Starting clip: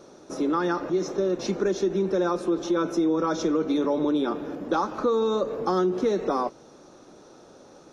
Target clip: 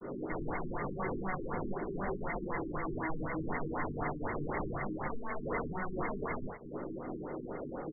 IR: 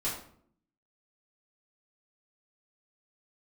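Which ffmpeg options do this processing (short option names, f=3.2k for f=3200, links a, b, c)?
-filter_complex "[0:a]adynamicequalizer=threshold=0.0178:dfrequency=820:dqfactor=0.75:tfrequency=820:tqfactor=0.75:attack=5:release=100:ratio=0.375:range=2:mode=cutabove:tftype=bell,acompressor=threshold=-37dB:ratio=12,aeval=exprs='sgn(val(0))*max(abs(val(0))-0.00168,0)':c=same,aresample=8000,aresample=44100,aeval=exprs='(mod(119*val(0)+1,2)-1)/119':c=same[a];[1:a]atrim=start_sample=2205,atrim=end_sample=4410[b];[a][b]afir=irnorm=-1:irlink=0,aexciter=amount=12.5:drive=5.2:freq=2.6k,afftfilt=real='re*lt(b*sr/1024,410*pow(2200/410,0.5+0.5*sin(2*PI*4*pts/sr)))':imag='im*lt(b*sr/1024,410*pow(2200/410,0.5+0.5*sin(2*PI*4*pts/sr)))':win_size=1024:overlap=0.75,volume=8.5dB"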